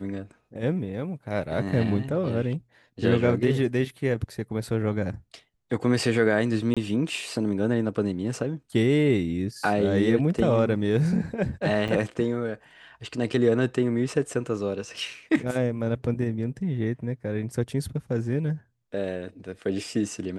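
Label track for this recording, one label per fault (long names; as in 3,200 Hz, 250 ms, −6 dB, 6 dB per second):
6.740000	6.770000	drop-out 26 ms
11.880000	11.890000	drop-out 6.3 ms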